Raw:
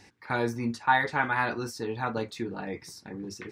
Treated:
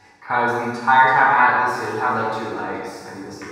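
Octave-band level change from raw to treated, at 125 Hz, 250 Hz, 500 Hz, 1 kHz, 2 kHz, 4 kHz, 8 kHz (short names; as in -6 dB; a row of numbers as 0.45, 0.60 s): +2.0 dB, +4.0 dB, +8.0 dB, +13.5 dB, +11.0 dB, +5.5 dB, n/a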